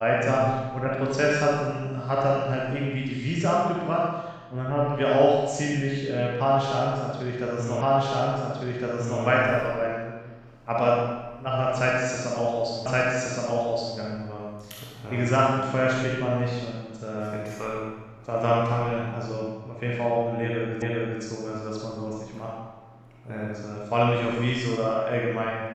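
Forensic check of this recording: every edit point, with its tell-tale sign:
7.81 repeat of the last 1.41 s
12.86 repeat of the last 1.12 s
20.82 repeat of the last 0.4 s

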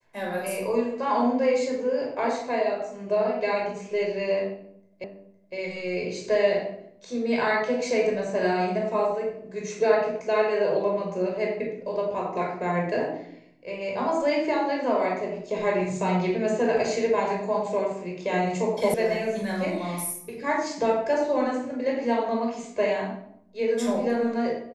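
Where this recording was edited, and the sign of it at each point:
5.04 repeat of the last 0.51 s
18.94 sound cut off

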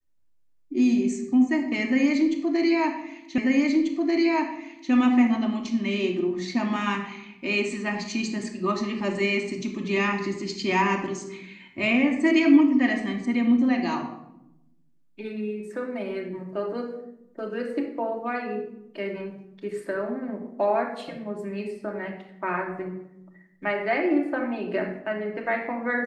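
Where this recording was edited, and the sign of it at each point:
3.38 repeat of the last 1.54 s

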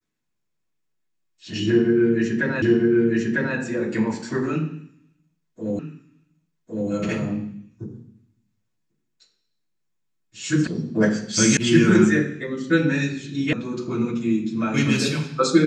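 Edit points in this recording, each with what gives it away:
2.62 repeat of the last 0.95 s
5.79 repeat of the last 1.11 s
10.67 sound cut off
11.57 sound cut off
13.53 sound cut off

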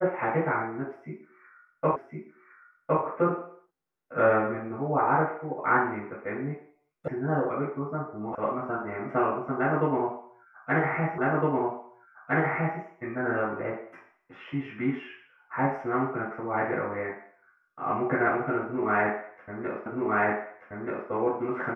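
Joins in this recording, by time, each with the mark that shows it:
1.96 repeat of the last 1.06 s
7.08 sound cut off
8.35 sound cut off
11.18 repeat of the last 1.61 s
19.86 repeat of the last 1.23 s

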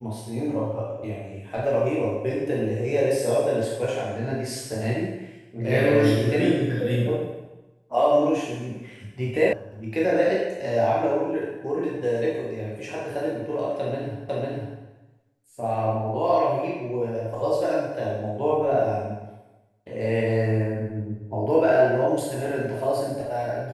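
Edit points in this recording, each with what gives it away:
9.53 sound cut off
14.29 repeat of the last 0.5 s

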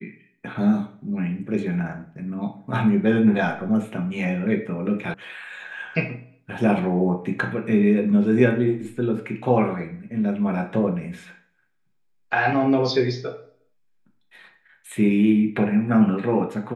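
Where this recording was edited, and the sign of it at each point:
5.14 sound cut off

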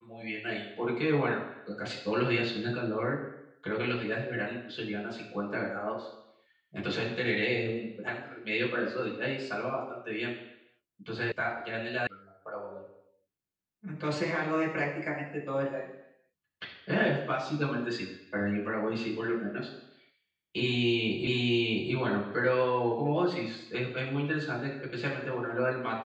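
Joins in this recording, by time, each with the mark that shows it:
11.32 sound cut off
12.07 sound cut off
21.27 repeat of the last 0.66 s

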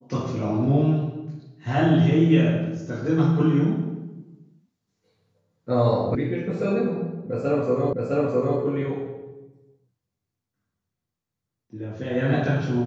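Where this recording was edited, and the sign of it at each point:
6.15 sound cut off
7.93 repeat of the last 0.66 s

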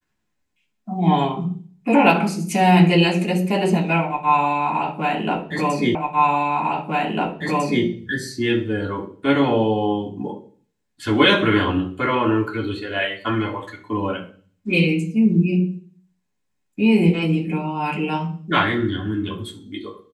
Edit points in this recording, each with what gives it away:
5.95 repeat of the last 1.9 s

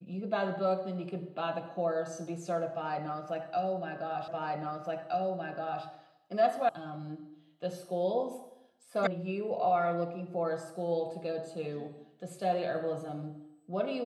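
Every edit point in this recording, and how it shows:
4.28 repeat of the last 1.57 s
6.69 sound cut off
9.07 sound cut off

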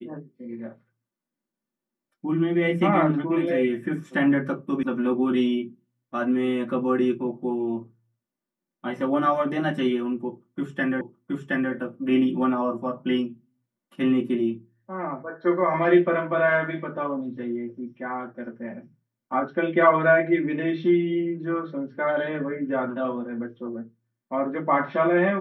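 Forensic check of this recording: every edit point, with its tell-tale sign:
4.83 sound cut off
11.01 repeat of the last 0.72 s

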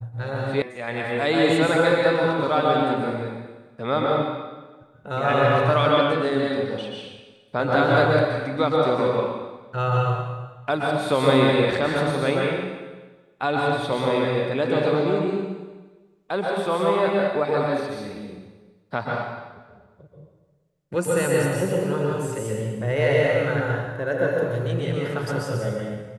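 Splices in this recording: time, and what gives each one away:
0.62 sound cut off

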